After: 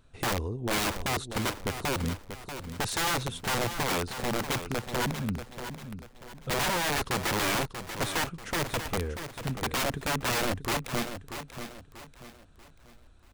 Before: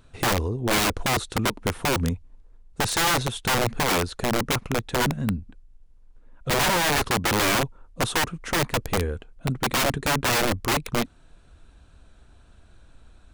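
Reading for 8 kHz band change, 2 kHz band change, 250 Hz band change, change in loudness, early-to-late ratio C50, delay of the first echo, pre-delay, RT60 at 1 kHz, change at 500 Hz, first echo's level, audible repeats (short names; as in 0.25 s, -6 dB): -6.0 dB, -6.0 dB, -6.0 dB, -6.5 dB, none, 0.637 s, none, none, -6.0 dB, -9.5 dB, 3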